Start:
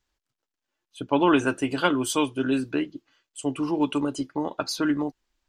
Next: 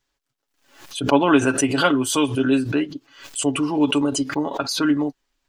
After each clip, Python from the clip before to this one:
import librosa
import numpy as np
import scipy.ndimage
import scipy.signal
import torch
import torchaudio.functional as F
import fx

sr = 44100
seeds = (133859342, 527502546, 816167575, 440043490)

y = fx.low_shelf(x, sr, hz=120.0, db=-4.0)
y = y + 0.51 * np.pad(y, (int(7.2 * sr / 1000.0), 0))[:len(y)]
y = fx.pre_swell(y, sr, db_per_s=100.0)
y = F.gain(torch.from_numpy(y), 3.0).numpy()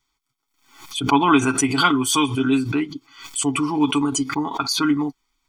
y = fx.low_shelf(x, sr, hz=330.0, db=-5.0)
y = y + 0.95 * np.pad(y, (int(0.9 * sr / 1000.0), 0))[:len(y)]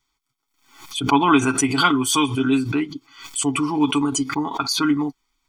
y = x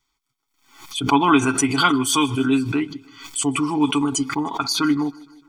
y = fx.echo_feedback(x, sr, ms=154, feedback_pct=56, wet_db=-24)